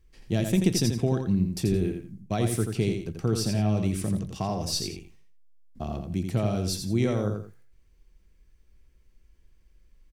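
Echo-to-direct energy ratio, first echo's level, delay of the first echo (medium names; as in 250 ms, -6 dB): -5.5 dB, -6.0 dB, 85 ms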